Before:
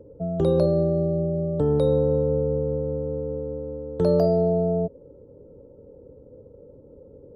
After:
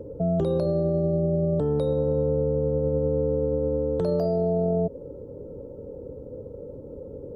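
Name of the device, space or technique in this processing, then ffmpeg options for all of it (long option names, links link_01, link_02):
stacked limiters: -af "alimiter=limit=-15.5dB:level=0:latency=1:release=375,alimiter=limit=-21dB:level=0:latency=1:release=22,alimiter=level_in=1.5dB:limit=-24dB:level=0:latency=1:release=61,volume=-1.5dB,volume=8.5dB"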